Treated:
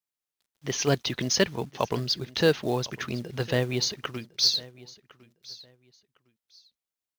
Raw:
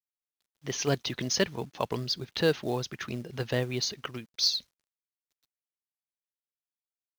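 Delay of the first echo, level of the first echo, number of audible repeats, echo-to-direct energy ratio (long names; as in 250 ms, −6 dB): 1,056 ms, −20.5 dB, 2, −20.5 dB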